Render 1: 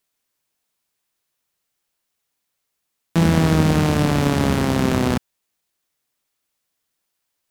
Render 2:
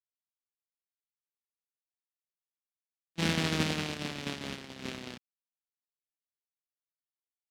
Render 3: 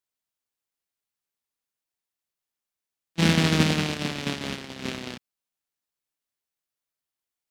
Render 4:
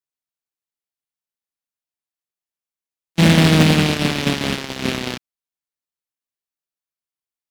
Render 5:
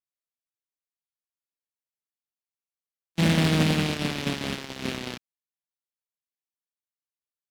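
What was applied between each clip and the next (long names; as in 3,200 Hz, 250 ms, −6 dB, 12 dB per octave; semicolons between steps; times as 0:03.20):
meter weighting curve D; noise gate −15 dBFS, range −40 dB; level −7 dB
dynamic equaliser 180 Hz, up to +4 dB, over −40 dBFS, Q 1.2; level +7 dB
leveller curve on the samples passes 3
pitch vibrato 1.1 Hz 8.2 cents; level −9 dB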